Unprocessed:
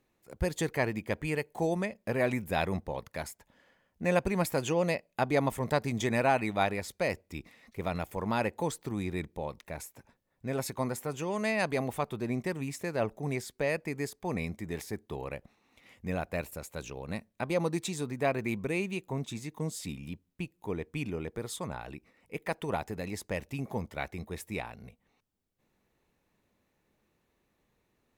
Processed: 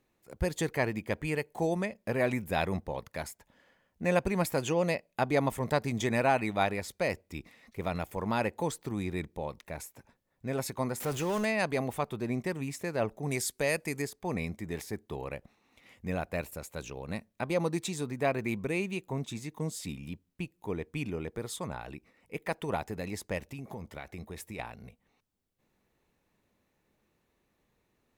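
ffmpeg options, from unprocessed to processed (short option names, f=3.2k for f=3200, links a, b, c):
-filter_complex "[0:a]asettb=1/sr,asplit=3[a][b][c];[a]atrim=end=11.004[d];[b]atrim=start=11:end=11.45,asetpts=PTS-STARTPTS,afade=t=in:d=0.004:c=qsin,afade=t=out:st=0.446:d=0.004:c=qsin,aeval=exprs='val(0)+0.5*0.0178*sgn(val(0))':c=same[e];[c]atrim=start=11.446[f];[d][e]acrossfade=d=0.004:c1=hsin:c2=qsin[g];[g][f]acrossfade=d=0.004:c1=qsin:c2=hsin,asettb=1/sr,asplit=3[h][i][j];[h]atrim=end=13.314[k];[i]atrim=start=13.31:end=14.02,asetpts=PTS-STARTPTS,afade=t=in:d=0.004:c=qsin,afade=t=out:st=0.706:d=0.004:c=qsin,equalizer=f=10k:w=0.41:g=13[l];[j]atrim=start=14.016[m];[k][l]acrossfade=d=0.004:c1=hsin:c2=qsin[n];[n][m]acrossfade=d=0.004:c1=qsin:c2=hsin,asettb=1/sr,asplit=3[o][p][q];[o]atrim=end=23.384[r];[p]atrim=start=23.38:end=24.59,asetpts=PTS-STARTPTS,afade=t=in:d=0.004:c=qsin,afade=t=out:st=1.206:d=0.004:c=qsin,acompressor=threshold=-37dB:ratio=6:attack=3.2:release=140:knee=1:detection=peak[s];[q]atrim=start=24.586[t];[r][s]acrossfade=d=0.004:c1=hsin:c2=qsin[u];[u][t]acrossfade=d=0.004:c1=qsin:c2=hsin"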